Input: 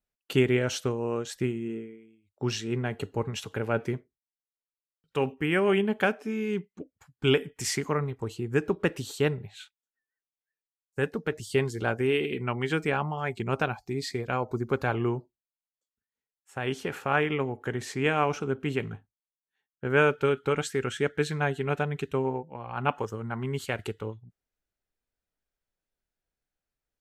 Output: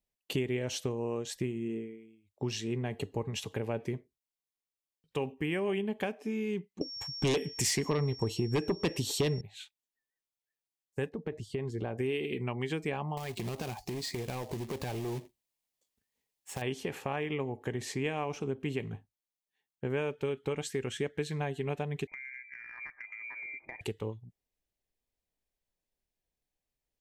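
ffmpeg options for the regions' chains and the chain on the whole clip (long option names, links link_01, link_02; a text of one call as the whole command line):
ffmpeg -i in.wav -filter_complex "[0:a]asettb=1/sr,asplit=3[link_01][link_02][link_03];[link_01]atrim=end=6.814[link_04];[link_02]atrim=start=6.81:end=9.41,asetpts=PTS-STARTPTS,afade=type=in:duration=0.004:curve=qsin,afade=type=out:start_time=2.596:duration=0.004:curve=qsin,aeval=exprs='0.282*sin(PI/2*2.51*val(0)/0.282)':channel_layout=same,aeval=exprs='val(0)+0.0126*sin(2*PI*5500*n/s)':channel_layout=same[link_05];[link_03]atrim=start=9.406[link_06];[link_04][link_05]acrossfade=duration=0.004:curve1=hsin:curve2=qsin[link_07];[link_07][link_06]acrossfade=duration=0.004:curve1=qsin:curve2=hsin,asettb=1/sr,asplit=3[link_08][link_09][link_10];[link_08]atrim=end=11.094[link_11];[link_09]atrim=start=11.09:end=11.98,asetpts=PTS-STARTPTS,afade=type=in:duration=0.004:curve=qsin,afade=type=out:start_time=0.886:duration=0.004:curve=qsin,lowpass=frequency=1500:poles=1,acompressor=threshold=-28dB:ratio=4:attack=3.2:release=140:knee=1:detection=peak[link_12];[link_10]atrim=start=11.976[link_13];[link_11][link_12]acrossfade=duration=0.004:curve1=hsin:curve2=qsin[link_14];[link_14][link_13]acrossfade=duration=0.004:curve1=qsin:curve2=hsin,asettb=1/sr,asplit=3[link_15][link_16][link_17];[link_15]atrim=end=13.174[link_18];[link_16]atrim=start=13.17:end=16.62,asetpts=PTS-STARTPTS,afade=type=in:duration=0.004:curve=qsin,afade=type=out:start_time=3.446:duration=0.004:curve=qsin,aeval=exprs='0.237*sin(PI/2*2.24*val(0)/0.237)':channel_layout=same,acompressor=threshold=-34dB:ratio=6:attack=3.2:release=140:knee=1:detection=peak,acrusher=bits=2:mode=log:mix=0:aa=0.000001[link_19];[link_17]atrim=start=16.616[link_20];[link_18][link_19]acrossfade=duration=0.004:curve1=hsin:curve2=qsin[link_21];[link_21][link_20]acrossfade=duration=0.004:curve1=qsin:curve2=hsin,asettb=1/sr,asplit=3[link_22][link_23][link_24];[link_22]atrim=end=22.074[link_25];[link_23]atrim=start=22.07:end=23.81,asetpts=PTS-STARTPTS,afade=type=in:duration=0.004:curve=qsin,afade=type=out:start_time=1.736:duration=0.004:curve=qsin,lowpass=frequency=2100:width_type=q:width=0.5098,lowpass=frequency=2100:width_type=q:width=0.6013,lowpass=frequency=2100:width_type=q:width=0.9,lowpass=frequency=2100:width_type=q:width=2.563,afreqshift=-2500,bandreject=frequency=1100:width=5.2,acompressor=threshold=-38dB:ratio=12:attack=3.2:release=140:knee=1:detection=peak[link_26];[link_24]atrim=start=23.806[link_27];[link_25][link_26]acrossfade=duration=0.004:curve1=hsin:curve2=qsin[link_28];[link_28][link_27]acrossfade=duration=0.004:curve1=qsin:curve2=hsin,acompressor=threshold=-31dB:ratio=3,equalizer=frequency=1400:width_type=o:width=0.33:gain=-14" out.wav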